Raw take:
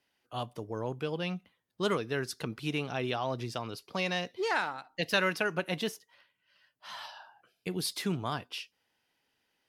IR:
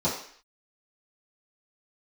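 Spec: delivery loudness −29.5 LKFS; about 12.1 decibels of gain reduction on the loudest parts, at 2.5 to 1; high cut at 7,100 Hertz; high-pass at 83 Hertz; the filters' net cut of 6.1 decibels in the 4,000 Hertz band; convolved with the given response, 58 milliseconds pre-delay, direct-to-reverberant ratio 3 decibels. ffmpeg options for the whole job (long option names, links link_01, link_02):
-filter_complex "[0:a]highpass=83,lowpass=7100,equalizer=frequency=4000:width_type=o:gain=-8,acompressor=threshold=-44dB:ratio=2.5,asplit=2[link_01][link_02];[1:a]atrim=start_sample=2205,adelay=58[link_03];[link_02][link_03]afir=irnorm=-1:irlink=0,volume=-14.5dB[link_04];[link_01][link_04]amix=inputs=2:normalize=0,volume=12dB"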